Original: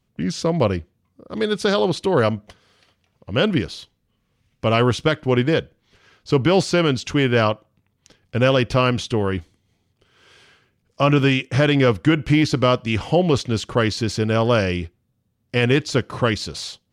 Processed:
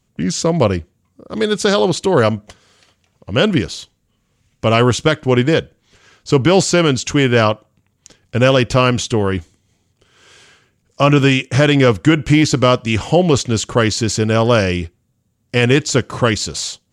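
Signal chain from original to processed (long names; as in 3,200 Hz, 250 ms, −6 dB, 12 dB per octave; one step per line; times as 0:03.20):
parametric band 7,200 Hz +11 dB 0.46 octaves
level +4.5 dB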